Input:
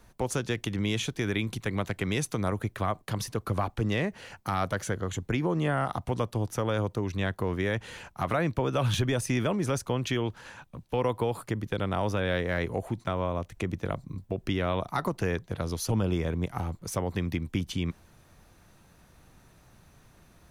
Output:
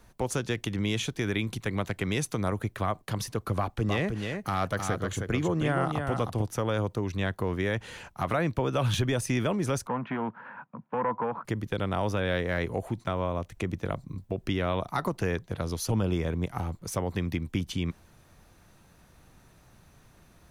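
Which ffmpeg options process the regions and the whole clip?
ffmpeg -i in.wav -filter_complex "[0:a]asettb=1/sr,asplit=3[link_01][link_02][link_03];[link_01]atrim=end=3.574[link_04];[link_02]atrim=start=3.57:end=6.42,asetpts=PTS-STARTPTS,afade=type=in:duration=0.004:curve=qsin,afade=type=out:start_time=2.846:duration=0.004:curve=qsin,bandreject=frequency=920:width=17,aecho=1:1:313:0.531,atrim=end_sample=125685[link_05];[link_03]atrim=start=6.416[link_06];[link_04][link_05]acrossfade=duration=0.004:curve1=hsin:curve2=qsin[link_07];[link_07][link_06]acrossfade=duration=0.004:curve1=qsin:curve2=hsin,asettb=1/sr,asplit=3[link_08][link_09][link_10];[link_08]atrim=end=9.874[link_11];[link_09]atrim=start=9.87:end=11.45,asetpts=PTS-STARTPTS,afade=type=in:duration=0.004:curve=qsin,afade=type=out:start_time=1.576:duration=0.004:curve=qsin,asoftclip=type=hard:threshold=-25dB,highpass=frequency=150:width=0.5412,highpass=frequency=150:width=1.3066,equalizer=frequency=220:width_type=q:width=4:gain=7,equalizer=frequency=360:width_type=q:width=4:gain=-7,equalizer=frequency=980:width_type=q:width=4:gain=8,equalizer=frequency=1400:width_type=q:width=4:gain=5,lowpass=frequency=2000:width=0.5412,lowpass=frequency=2000:width=1.3066[link_12];[link_10]atrim=start=11.446[link_13];[link_11][link_12]acrossfade=duration=0.004:curve1=hsin:curve2=qsin[link_14];[link_14][link_13]acrossfade=duration=0.004:curve1=qsin:curve2=hsin" out.wav

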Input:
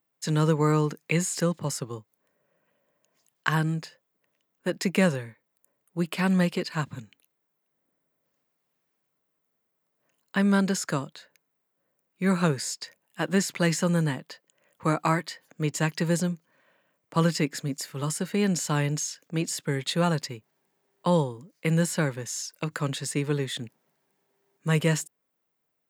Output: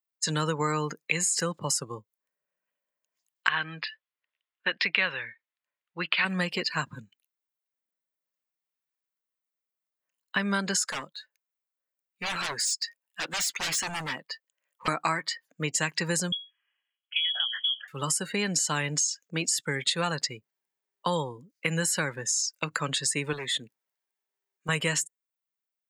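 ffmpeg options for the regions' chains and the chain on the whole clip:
ffmpeg -i in.wav -filter_complex "[0:a]asettb=1/sr,asplit=3[link_01][link_02][link_03];[link_01]atrim=end=3.484[link_04];[link_02]atrim=start=3.48:end=6.25,asetpts=PTS-STARTPTS,afade=type=in:duration=0.004:curve=qsin,afade=type=out:start_time=2.766:duration=0.004:curve=qsin,lowpass=frequency=3700:width=0.5412,lowpass=frequency=3700:width=1.3066,tiltshelf=frequency=710:gain=-9[link_05];[link_03]atrim=start=6.246[link_06];[link_04][link_05]acrossfade=duration=0.004:curve1=hsin:curve2=qsin[link_07];[link_07][link_06]acrossfade=duration=0.004:curve1=qsin:curve2=hsin,asettb=1/sr,asplit=3[link_08][link_09][link_10];[link_08]atrim=end=10.824[link_11];[link_09]atrim=start=10.82:end=14.88,asetpts=PTS-STARTPTS,afade=type=in:duration=0.004:curve=qsin,afade=type=out:start_time=4.056:duration=0.004:curve=qsin,highpass=frequency=340:poles=1,aeval=exprs='0.0335*(abs(mod(val(0)/0.0335+3,4)-2)-1)':channel_layout=same[link_12];[link_10]atrim=start=14.876[link_13];[link_11][link_12]acrossfade=duration=0.004:curve1=hsin:curve2=qsin[link_14];[link_14][link_13]acrossfade=duration=0.004:curve1=qsin:curve2=hsin,asettb=1/sr,asplit=3[link_15][link_16][link_17];[link_15]atrim=end=16.324[link_18];[link_16]atrim=start=16.32:end=17.88,asetpts=PTS-STARTPTS,afade=type=in:duration=0.004:curve=qsin,afade=type=out:start_time=1.556:duration=0.004:curve=qsin,bandreject=frequency=60:width_type=h:width=6,bandreject=frequency=120:width_type=h:width=6,bandreject=frequency=180:width_type=h:width=6,bandreject=frequency=240:width_type=h:width=6,bandreject=frequency=300:width_type=h:width=6,bandreject=frequency=360:width_type=h:width=6,bandreject=frequency=420:width_type=h:width=6,bandreject=frequency=480:width_type=h:width=6,bandreject=frequency=540:width_type=h:width=6,bandreject=frequency=600:width_type=h:width=6,lowpass=frequency=3000:width_type=q:width=0.5098,lowpass=frequency=3000:width_type=q:width=0.6013,lowpass=frequency=3000:width_type=q:width=0.9,lowpass=frequency=3000:width_type=q:width=2.563,afreqshift=-3500,acompressor=threshold=-29dB:ratio=12:attack=3.2:release=140:knee=1:detection=peak[link_19];[link_17]atrim=start=17.876[link_20];[link_18][link_19]acrossfade=duration=0.004:curve1=hsin:curve2=qsin[link_21];[link_21][link_20]acrossfade=duration=0.004:curve1=qsin:curve2=hsin,asettb=1/sr,asplit=3[link_22][link_23][link_24];[link_22]atrim=end=23.334[link_25];[link_23]atrim=start=23.33:end=24.69,asetpts=PTS-STARTPTS,afade=type=in:duration=0.004:curve=qsin,afade=type=out:start_time=1.356:duration=0.004:curve=qsin,lowshelf=frequency=230:gain=-9,asoftclip=type=hard:threshold=-31.5dB[link_26];[link_24]atrim=start=24.686[link_27];[link_25][link_26]acrossfade=duration=0.004:curve1=hsin:curve2=qsin[link_28];[link_28][link_27]acrossfade=duration=0.004:curve1=qsin:curve2=hsin,afftdn=noise_reduction=21:noise_floor=-43,tiltshelf=frequency=830:gain=-7.5,acompressor=threshold=-27dB:ratio=3,volume=2.5dB" out.wav

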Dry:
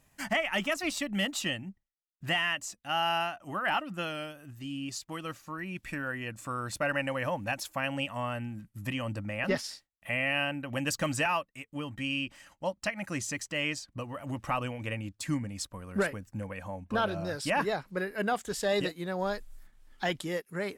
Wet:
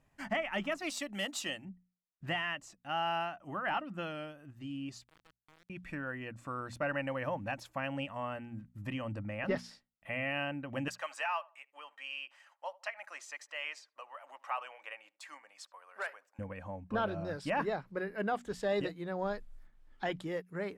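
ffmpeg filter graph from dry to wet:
ffmpeg -i in.wav -filter_complex "[0:a]asettb=1/sr,asplit=3[link_01][link_02][link_03];[link_01]atrim=end=0.824[link_04];[link_02]atrim=start=0.82:end=1.65,asetpts=PTS-STARTPTS,afade=type=in:duration=0.004:curve=qsin,afade=type=out:start_time=0.826:duration=0.004:curve=qsin,bass=frequency=250:gain=-11,treble=frequency=4000:gain=12,asoftclip=type=hard:threshold=-14.5dB[link_05];[link_03]atrim=start=1.646[link_06];[link_04][link_05]acrossfade=duration=0.004:curve1=hsin:curve2=qsin[link_07];[link_07][link_06]acrossfade=duration=0.004:curve1=qsin:curve2=hsin,asettb=1/sr,asplit=3[link_08][link_09][link_10];[link_08]atrim=end=5.044[link_11];[link_09]atrim=start=5.04:end=5.7,asetpts=PTS-STARTPTS,afade=type=in:duration=0.004:curve=qsin,afade=type=out:start_time=0.656:duration=0.004:curve=qsin,lowshelf=frequency=270:gain=-9,acompressor=threshold=-54dB:ratio=4:attack=3.2:release=140:knee=1:detection=peak,acrusher=bits=5:dc=4:mix=0:aa=0.000001[link_12];[link_10]atrim=start=5.696[link_13];[link_11][link_12]acrossfade=duration=0.004:curve1=hsin:curve2=qsin[link_14];[link_14][link_13]acrossfade=duration=0.004:curve1=qsin:curve2=hsin,asettb=1/sr,asplit=3[link_15][link_16][link_17];[link_15]atrim=end=10.884[link_18];[link_16]atrim=start=10.88:end=16.39,asetpts=PTS-STARTPTS,afade=type=in:duration=0.004:curve=qsin,afade=type=out:start_time=5.506:duration=0.004:curve=qsin,highpass=frequency=710:width=0.5412,highpass=frequency=710:width=1.3066,asplit=2[link_19][link_20];[link_20]adelay=75,lowpass=frequency=1300:poles=1,volume=-20dB,asplit=2[link_21][link_22];[link_22]adelay=75,lowpass=frequency=1300:poles=1,volume=0.34,asplit=2[link_23][link_24];[link_24]adelay=75,lowpass=frequency=1300:poles=1,volume=0.34[link_25];[link_19][link_21][link_23][link_25]amix=inputs=4:normalize=0,atrim=end_sample=242991[link_26];[link_17]atrim=start=16.386[link_27];[link_18][link_26]acrossfade=duration=0.004:curve1=hsin:curve2=qsin[link_28];[link_28][link_27]acrossfade=duration=0.004:curve1=qsin:curve2=hsin,lowpass=frequency=1800:poles=1,bandreject=frequency=60:width_type=h:width=6,bandreject=frequency=120:width_type=h:width=6,bandreject=frequency=180:width_type=h:width=6,bandreject=frequency=240:width_type=h:width=6,volume=-3dB" out.wav

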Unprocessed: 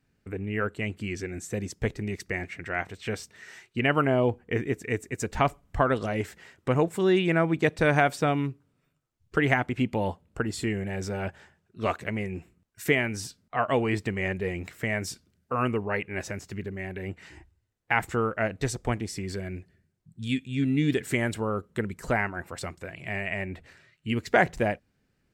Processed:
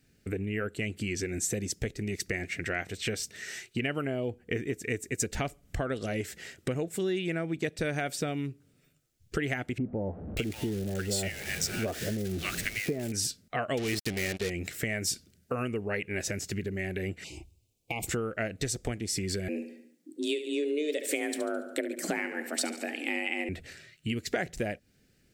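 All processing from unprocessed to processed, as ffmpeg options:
ffmpeg -i in.wav -filter_complex "[0:a]asettb=1/sr,asplit=3[link_01][link_02][link_03];[link_01]atrim=end=9.784[link_04];[link_02]atrim=start=9.78:end=13.12,asetpts=PTS-STARTPTS,afade=type=in:duration=0.004:curve=qsin,afade=type=out:start_time=3.336:duration=0.004:curve=qsin,aeval=exprs='val(0)+0.5*0.015*sgn(val(0))':channel_layout=same,acrossover=split=1100[link_05][link_06];[link_06]adelay=590[link_07];[link_05][link_07]amix=inputs=2:normalize=0,atrim=end_sample=147294[link_08];[link_03]atrim=start=13.116[link_09];[link_04][link_08]acrossfade=duration=0.004:curve1=hsin:curve2=qsin[link_10];[link_10][link_09]acrossfade=duration=0.004:curve1=qsin:curve2=hsin,asettb=1/sr,asplit=3[link_11][link_12][link_13];[link_11]atrim=end=13.774[link_14];[link_12]atrim=start=13.77:end=14.5,asetpts=PTS-STARTPTS,afade=type=in:duration=0.004:curve=qsin,afade=type=out:start_time=0.726:duration=0.004:curve=qsin,equalizer=frequency=4600:width_type=o:width=0.63:gain=12.5,acrusher=bits=4:mix=0:aa=0.5[link_15];[link_13]atrim=start=14.496[link_16];[link_14][link_15]acrossfade=duration=0.004:curve1=hsin:curve2=qsin[link_17];[link_17][link_16]acrossfade=duration=0.004:curve1=qsin:curve2=hsin,asettb=1/sr,asplit=3[link_18][link_19][link_20];[link_18]atrim=end=17.244[link_21];[link_19]atrim=start=17.24:end=18.07,asetpts=PTS-STARTPTS,afade=type=in:duration=0.004:curve=qsin,afade=type=out:start_time=0.826:duration=0.004:curve=qsin,asuperstop=centerf=1600:order=12:qfactor=1.5,acompressor=threshold=-32dB:ratio=6:attack=3.2:release=140:knee=1:detection=peak[link_22];[link_20]atrim=start=18.066[link_23];[link_21][link_22]acrossfade=duration=0.004:curve1=hsin:curve2=qsin[link_24];[link_24][link_23]acrossfade=duration=0.004:curve1=qsin:curve2=hsin,asettb=1/sr,asplit=3[link_25][link_26][link_27];[link_25]atrim=end=19.484[link_28];[link_26]atrim=start=19.48:end=23.49,asetpts=PTS-STARTPTS,afade=type=in:duration=0.004:curve=qsin,afade=type=out:start_time=4.006:duration=0.004:curve=qsin,afreqshift=150,aecho=1:1:71|142|213|284|355:0.251|0.118|0.0555|0.0261|0.0123,atrim=end_sample=176841[link_29];[link_27]atrim=start=23.486[link_30];[link_28][link_29]acrossfade=duration=0.004:curve1=hsin:curve2=qsin[link_31];[link_31][link_30]acrossfade=duration=0.004:curve1=qsin:curve2=hsin,equalizer=frequency=1000:width=1.9:gain=-14.5,acompressor=threshold=-36dB:ratio=5,bass=frequency=250:gain=-3,treble=frequency=4000:gain=5,volume=7.5dB" out.wav

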